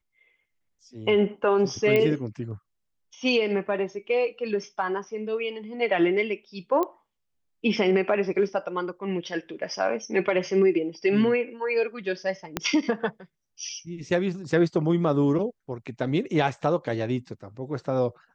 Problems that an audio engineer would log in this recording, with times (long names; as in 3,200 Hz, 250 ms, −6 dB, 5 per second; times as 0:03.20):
0:01.96: click −12 dBFS
0:06.83: click −15 dBFS
0:12.57: click −9 dBFS